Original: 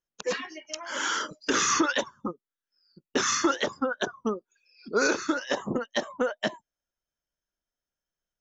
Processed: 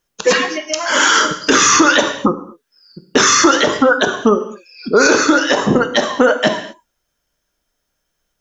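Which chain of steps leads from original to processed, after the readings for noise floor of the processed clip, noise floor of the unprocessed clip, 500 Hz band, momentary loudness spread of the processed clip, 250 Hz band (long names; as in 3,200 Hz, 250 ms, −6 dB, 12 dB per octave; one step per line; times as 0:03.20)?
−73 dBFS, below −85 dBFS, +15.5 dB, 10 LU, +15.0 dB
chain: reverb whose tail is shaped and stops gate 270 ms falling, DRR 8.5 dB
boost into a limiter +19.5 dB
level −1 dB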